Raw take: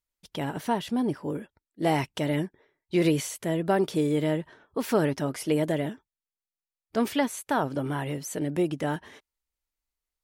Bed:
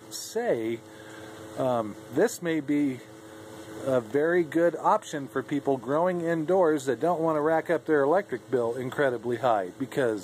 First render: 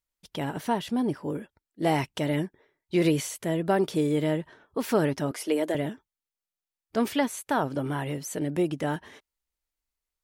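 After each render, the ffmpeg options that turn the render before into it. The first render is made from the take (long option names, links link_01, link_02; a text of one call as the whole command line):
ffmpeg -i in.wav -filter_complex "[0:a]asettb=1/sr,asplit=3[link_01][link_02][link_03];[link_01]atrim=end=5.314[link_04];[link_02]atrim=start=5.31:end=5.75,asetpts=PTS-STARTPTS,afade=type=in:duration=0.004:curve=qsin,afade=type=out:start_time=0.436:duration=0.004:curve=qsin,highpass=frequency=270:width=0.5412,highpass=frequency=270:width=1.3066[link_05];[link_03]atrim=start=5.746[link_06];[link_04][link_05]acrossfade=duration=0.004:curve1=hsin:curve2=qsin[link_07];[link_07][link_06]acrossfade=duration=0.004:curve1=qsin:curve2=hsin" out.wav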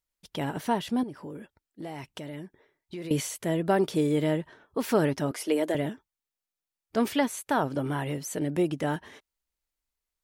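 ffmpeg -i in.wav -filter_complex "[0:a]asettb=1/sr,asplit=3[link_01][link_02][link_03];[link_01]atrim=end=1.034[link_04];[link_02]atrim=start=1.03:end=3.11,asetpts=PTS-STARTPTS,afade=type=in:duration=0.004:curve=qsin,afade=type=out:start_time=2.076:duration=0.004:curve=qsin,acompressor=threshold=-37dB:ratio=4:attack=3.2:release=140:knee=1:detection=peak[link_05];[link_03]atrim=start=3.106[link_06];[link_04][link_05]acrossfade=duration=0.004:curve1=hsin:curve2=qsin[link_07];[link_07][link_06]acrossfade=duration=0.004:curve1=qsin:curve2=hsin" out.wav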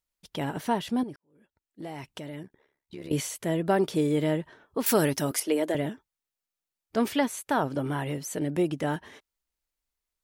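ffmpeg -i in.wav -filter_complex "[0:a]asettb=1/sr,asplit=3[link_01][link_02][link_03];[link_01]atrim=end=2.434[link_04];[link_02]atrim=start=2.43:end=3.13,asetpts=PTS-STARTPTS,afade=type=in:duration=0.004:curve=qsin,afade=type=out:start_time=0.696:duration=0.004:curve=qsin,tremolo=f=70:d=0.824[link_05];[link_03]atrim=start=3.126[link_06];[link_04][link_05]acrossfade=duration=0.004:curve1=hsin:curve2=qsin[link_07];[link_07][link_06]acrossfade=duration=0.004:curve1=qsin:curve2=hsin,asettb=1/sr,asplit=3[link_08][link_09][link_10];[link_08]atrim=end=4.864[link_11];[link_09]atrim=start=4.86:end=5.4,asetpts=PTS-STARTPTS,afade=type=in:duration=0.004:curve=qsin,afade=type=out:start_time=0.536:duration=0.004:curve=qsin,aemphasis=mode=production:type=75kf[link_12];[link_10]atrim=start=5.396[link_13];[link_11][link_12]acrossfade=duration=0.004:curve1=hsin:curve2=qsin[link_14];[link_14][link_13]acrossfade=duration=0.004:curve1=qsin:curve2=hsin,asplit=2[link_15][link_16];[link_15]atrim=end=1.16,asetpts=PTS-STARTPTS,afade=type=out:start_time=1.156:duration=0.004:curve=hsin[link_17];[link_16]atrim=start=1.16,asetpts=PTS-STARTPTS,afade=type=in:duration=0.69:curve=qua[link_18];[link_17][link_18]concat=n=2:v=0:a=1" out.wav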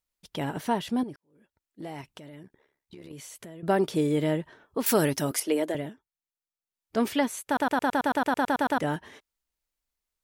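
ffmpeg -i in.wav -filter_complex "[0:a]asettb=1/sr,asplit=3[link_01][link_02][link_03];[link_01]atrim=end=2.014[link_04];[link_02]atrim=start=2.01:end=3.63,asetpts=PTS-STARTPTS,afade=type=in:duration=0.004:curve=qsin,afade=type=out:start_time=1.616:duration=0.004:curve=qsin,acompressor=threshold=-41dB:ratio=6:attack=3.2:release=140:knee=1:detection=peak[link_05];[link_03]atrim=start=3.626[link_06];[link_04][link_05]acrossfade=duration=0.004:curve1=hsin:curve2=qsin[link_07];[link_07][link_06]acrossfade=duration=0.004:curve1=qsin:curve2=hsin,asplit=15[link_08][link_09][link_10][link_11][link_12][link_13][link_14][link_15][link_16][link_17][link_18][link_19][link_20][link_21][link_22];[link_08]atrim=end=5.93,asetpts=PTS-STARTPTS,afade=type=out:start_time=5.6:duration=0.33:silence=0.375837[link_23];[link_09]atrim=start=5.93:end=6.63,asetpts=PTS-STARTPTS,volume=-8.5dB[link_24];[link_10]atrim=start=6.63:end=7.572,asetpts=PTS-STARTPTS,afade=type=in:duration=0.33:silence=0.375837[link_25];[link_11]atrim=start=7.458:end=7.572[link_26];[link_12]atrim=start=7.458:end=7.572[link_27];[link_13]atrim=start=7.458:end=7.572[link_28];[link_14]atrim=start=7.458:end=7.572[link_29];[link_15]atrim=start=7.458:end=7.572[link_30];[link_16]atrim=start=7.458:end=7.572[link_31];[link_17]atrim=start=7.458:end=7.572[link_32];[link_18]atrim=start=7.458:end=7.572[link_33];[link_19]atrim=start=7.458:end=7.572[link_34];[link_20]atrim=start=7.458:end=7.572[link_35];[link_21]atrim=start=7.458:end=7.572[link_36];[link_22]atrim=start=8.778[link_37];[link_23][link_24][link_25]concat=n=3:v=0:a=1[link_38];[link_38][link_26]acrossfade=duration=0.004:curve1=hsin:curve2=hsin[link_39];[link_39][link_27]acrossfade=duration=0.004:curve1=hsin:curve2=hsin[link_40];[link_40][link_28]acrossfade=duration=0.004:curve1=hsin:curve2=hsin[link_41];[link_41][link_29]acrossfade=duration=0.004:curve1=hsin:curve2=hsin[link_42];[link_42][link_30]acrossfade=duration=0.004:curve1=hsin:curve2=hsin[link_43];[link_43][link_31]acrossfade=duration=0.004:curve1=hsin:curve2=hsin[link_44];[link_44][link_32]acrossfade=duration=0.004:curve1=hsin:curve2=hsin[link_45];[link_45][link_33]acrossfade=duration=0.004:curve1=hsin:curve2=hsin[link_46];[link_46][link_34]acrossfade=duration=0.004:curve1=hsin:curve2=hsin[link_47];[link_47][link_35]acrossfade=duration=0.004:curve1=hsin:curve2=hsin[link_48];[link_48][link_36]acrossfade=duration=0.004:curve1=hsin:curve2=hsin[link_49];[link_49][link_37]acrossfade=duration=0.004:curve1=hsin:curve2=hsin" out.wav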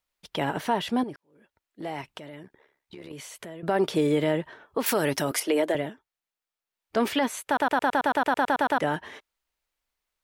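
ffmpeg -i in.wav -filter_complex "[0:a]acrossover=split=420|4100[link_01][link_02][link_03];[link_02]acontrast=78[link_04];[link_01][link_04][link_03]amix=inputs=3:normalize=0,alimiter=limit=-14.5dB:level=0:latency=1:release=60" out.wav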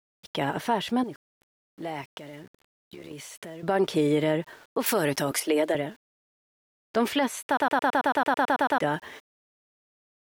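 ffmpeg -i in.wav -af "aeval=exprs='val(0)*gte(abs(val(0)),0.00282)':channel_layout=same" out.wav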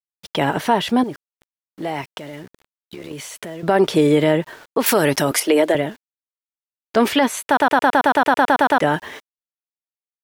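ffmpeg -i in.wav -af "volume=8.5dB" out.wav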